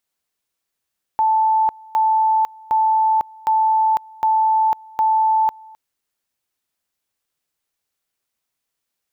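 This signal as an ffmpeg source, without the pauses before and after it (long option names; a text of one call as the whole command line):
ffmpeg -f lavfi -i "aevalsrc='pow(10,(-13-25.5*gte(mod(t,0.76),0.5))/20)*sin(2*PI*878*t)':duration=4.56:sample_rate=44100" out.wav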